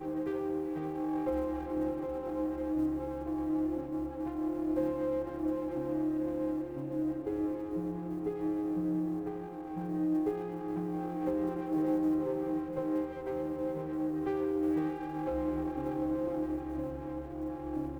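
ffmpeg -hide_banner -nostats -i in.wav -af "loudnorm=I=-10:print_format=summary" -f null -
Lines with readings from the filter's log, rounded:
Input Integrated:    -34.5 LUFS
Input True Peak:     -19.8 dBTP
Input LRA:             2.1 LU
Input Threshold:     -44.5 LUFS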